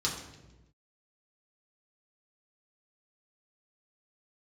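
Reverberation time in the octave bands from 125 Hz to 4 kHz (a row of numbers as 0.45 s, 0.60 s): 1.4 s, 1.3 s, 1.2 s, 0.90 s, 0.90 s, 0.85 s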